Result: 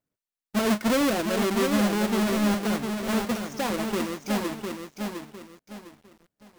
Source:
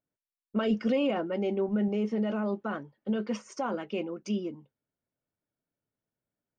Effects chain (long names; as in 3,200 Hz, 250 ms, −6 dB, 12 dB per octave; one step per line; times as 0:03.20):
each half-wave held at its own peak
feedback echo at a low word length 705 ms, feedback 35%, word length 9 bits, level −5 dB